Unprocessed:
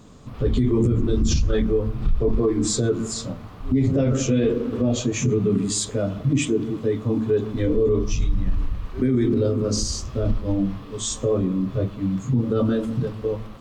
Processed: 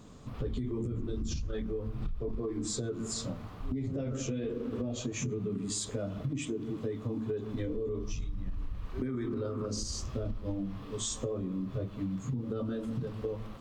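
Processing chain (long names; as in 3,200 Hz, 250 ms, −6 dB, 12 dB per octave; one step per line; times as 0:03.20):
0:09.06–0:09.66: parametric band 1,200 Hz +12 dB 1.1 octaves
downward compressor 10 to 1, threshold −26 dBFS, peak gain reduction 12 dB
level −5 dB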